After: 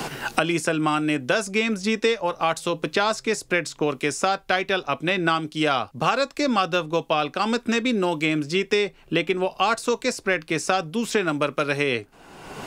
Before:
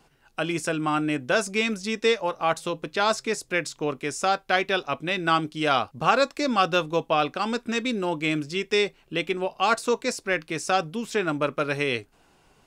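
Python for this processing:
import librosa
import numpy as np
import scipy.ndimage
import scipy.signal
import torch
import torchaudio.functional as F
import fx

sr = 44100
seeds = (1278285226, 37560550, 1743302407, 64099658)

y = fx.band_squash(x, sr, depth_pct=100)
y = F.gain(torch.from_numpy(y), 1.0).numpy()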